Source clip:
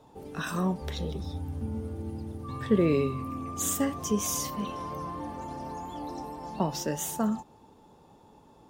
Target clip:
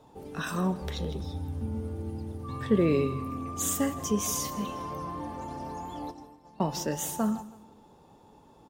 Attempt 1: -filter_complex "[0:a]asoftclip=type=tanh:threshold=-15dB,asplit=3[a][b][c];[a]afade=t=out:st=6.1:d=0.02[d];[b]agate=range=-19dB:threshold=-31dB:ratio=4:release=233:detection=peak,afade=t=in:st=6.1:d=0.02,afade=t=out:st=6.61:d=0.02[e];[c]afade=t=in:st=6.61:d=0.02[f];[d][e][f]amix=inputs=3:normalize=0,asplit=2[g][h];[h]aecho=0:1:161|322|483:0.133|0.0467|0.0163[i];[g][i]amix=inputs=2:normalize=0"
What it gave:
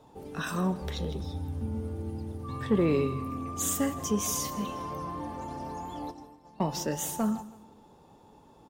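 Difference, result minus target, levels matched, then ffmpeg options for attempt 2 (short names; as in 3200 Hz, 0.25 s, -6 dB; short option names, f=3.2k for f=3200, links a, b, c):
soft clip: distortion +15 dB
-filter_complex "[0:a]asoftclip=type=tanh:threshold=-6.5dB,asplit=3[a][b][c];[a]afade=t=out:st=6.1:d=0.02[d];[b]agate=range=-19dB:threshold=-31dB:ratio=4:release=233:detection=peak,afade=t=in:st=6.1:d=0.02,afade=t=out:st=6.61:d=0.02[e];[c]afade=t=in:st=6.61:d=0.02[f];[d][e][f]amix=inputs=3:normalize=0,asplit=2[g][h];[h]aecho=0:1:161|322|483:0.133|0.0467|0.0163[i];[g][i]amix=inputs=2:normalize=0"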